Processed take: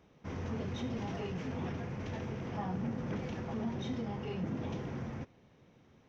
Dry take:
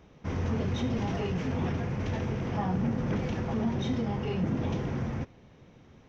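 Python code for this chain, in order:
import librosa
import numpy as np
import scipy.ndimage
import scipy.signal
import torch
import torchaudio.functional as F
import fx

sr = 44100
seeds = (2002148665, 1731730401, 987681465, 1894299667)

y = fx.low_shelf(x, sr, hz=62.0, db=-10.0)
y = y * librosa.db_to_amplitude(-6.5)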